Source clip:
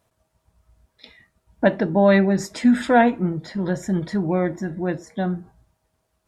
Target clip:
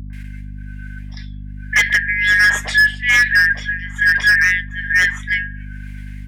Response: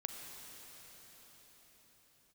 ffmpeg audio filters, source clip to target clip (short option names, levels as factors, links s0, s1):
-filter_complex "[0:a]afftfilt=real='real(if(lt(b,272),68*(eq(floor(b/68),0)*3+eq(floor(b/68),1)*0+eq(floor(b/68),2)*1+eq(floor(b/68),3)*2)+mod(b,68),b),0)':imag='imag(if(lt(b,272),68*(eq(floor(b/68),0)*3+eq(floor(b/68),1)*0+eq(floor(b/68),2)*1+eq(floor(b/68),3)*2)+mod(b,68),b),0)':win_size=2048:overlap=0.75,equalizer=f=1800:w=0.71:g=9,tremolo=f=1.2:d=0.92,acrossover=split=4100[s0][s1];[s0]alimiter=limit=0.447:level=0:latency=1:release=154[s2];[s2][s1]amix=inputs=2:normalize=0,acrossover=split=380|1300[s3][s4][s5];[s4]adelay=100[s6];[s5]adelay=130[s7];[s3][s6][s7]amix=inputs=3:normalize=0,asoftclip=type=hard:threshold=0.168,areverse,acompressor=mode=upward:threshold=0.00891:ratio=2.5,areverse,aeval=exprs='val(0)+0.0158*(sin(2*PI*50*n/s)+sin(2*PI*2*50*n/s)/2+sin(2*PI*3*50*n/s)/3+sin(2*PI*4*50*n/s)/4+sin(2*PI*5*50*n/s)/5)':c=same,volume=2.24"